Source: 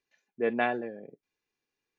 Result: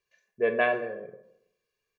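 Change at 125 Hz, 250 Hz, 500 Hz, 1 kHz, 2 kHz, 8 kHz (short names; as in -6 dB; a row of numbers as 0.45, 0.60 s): 0.0 dB, -4.0 dB, +4.5 dB, +1.0 dB, +4.5 dB, n/a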